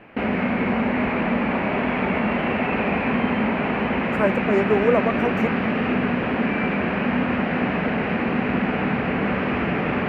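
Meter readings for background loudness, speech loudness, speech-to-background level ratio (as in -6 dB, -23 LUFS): -22.5 LUFS, -23.0 LUFS, -0.5 dB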